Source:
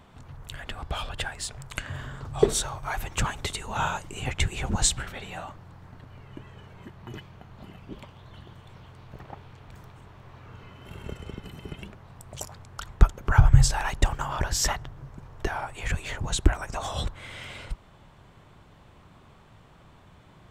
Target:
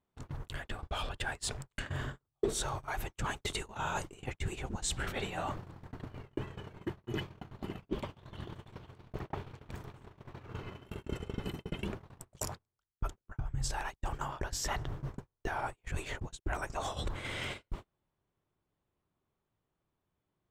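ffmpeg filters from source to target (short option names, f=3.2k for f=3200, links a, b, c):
-af "areverse,acompressor=threshold=-41dB:ratio=8,areverse,agate=range=-39dB:threshold=-45dB:ratio=16:detection=peak,equalizer=f=360:t=o:w=0.9:g=6.5,volume=7dB"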